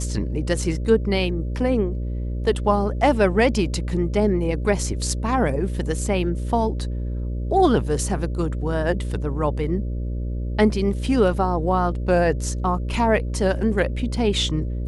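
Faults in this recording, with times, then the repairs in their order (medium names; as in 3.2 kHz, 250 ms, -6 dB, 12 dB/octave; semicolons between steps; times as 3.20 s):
buzz 60 Hz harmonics 10 -26 dBFS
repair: de-hum 60 Hz, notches 10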